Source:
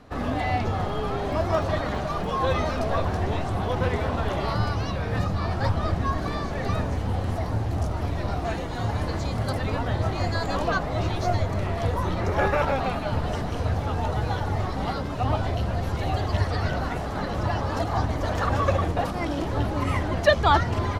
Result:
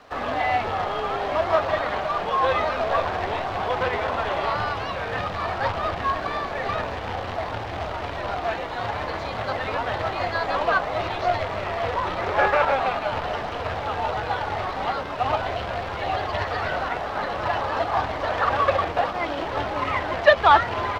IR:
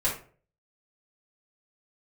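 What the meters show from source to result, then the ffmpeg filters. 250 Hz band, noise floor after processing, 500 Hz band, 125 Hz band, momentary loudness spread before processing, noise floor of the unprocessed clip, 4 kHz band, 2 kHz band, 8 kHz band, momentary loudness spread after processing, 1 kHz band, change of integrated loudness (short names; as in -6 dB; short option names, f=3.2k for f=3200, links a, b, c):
-6.5 dB, -31 dBFS, +3.0 dB, -10.5 dB, 5 LU, -30 dBFS, +3.0 dB, +5.5 dB, n/a, 8 LU, +5.0 dB, +1.5 dB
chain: -filter_complex "[0:a]acrusher=bits=3:mode=log:mix=0:aa=0.000001,acrossover=split=3900[a][b];[b]acompressor=threshold=-52dB:ratio=4:attack=1:release=60[c];[a][c]amix=inputs=2:normalize=0,acrossover=split=460 5600:gain=0.158 1 0.141[d][e][f];[d][e][f]amix=inputs=3:normalize=0,volume=5.5dB"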